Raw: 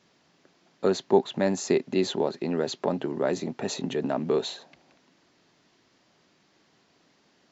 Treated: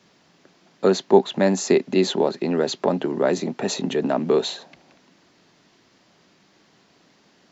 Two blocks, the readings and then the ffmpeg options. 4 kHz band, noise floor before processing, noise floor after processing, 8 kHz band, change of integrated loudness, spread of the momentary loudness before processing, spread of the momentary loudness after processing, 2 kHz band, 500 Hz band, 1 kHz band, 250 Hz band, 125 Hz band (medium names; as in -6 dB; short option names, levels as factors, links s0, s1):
+6.0 dB, -66 dBFS, -59 dBFS, no reading, +6.0 dB, 7 LU, 7 LU, +6.0 dB, +6.0 dB, +6.0 dB, +6.0 dB, +5.0 dB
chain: -filter_complex "[0:a]equalizer=f=190:w=5.7:g=3.5,acrossover=split=160|2100[s0][s1][s2];[s0]acompressor=threshold=0.00316:ratio=6[s3];[s3][s1][s2]amix=inputs=3:normalize=0,volume=2"